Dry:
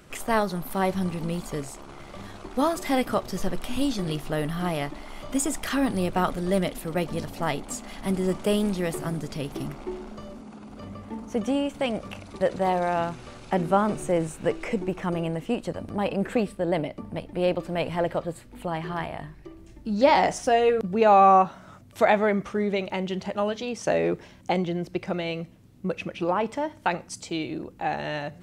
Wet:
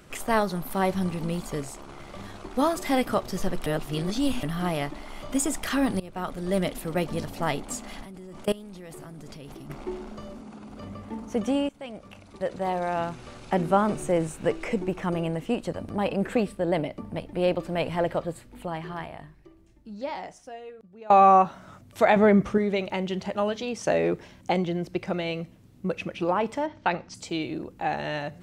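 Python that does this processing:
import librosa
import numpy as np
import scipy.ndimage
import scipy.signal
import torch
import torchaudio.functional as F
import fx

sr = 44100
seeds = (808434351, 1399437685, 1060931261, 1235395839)

y = fx.level_steps(x, sr, step_db=21, at=(8.03, 9.7))
y = fx.low_shelf(y, sr, hz=460.0, db=9.0, at=(22.16, 22.58))
y = fx.lowpass(y, sr, hz=5400.0, slope=24, at=(26.66, 27.14), fade=0.02)
y = fx.edit(y, sr, fx.reverse_span(start_s=3.66, length_s=0.77),
    fx.fade_in_from(start_s=6.0, length_s=0.68, floor_db=-20.5),
    fx.fade_in_from(start_s=11.69, length_s=1.78, floor_db=-15.5),
    fx.fade_out_to(start_s=18.25, length_s=2.85, curve='qua', floor_db=-24.0), tone=tone)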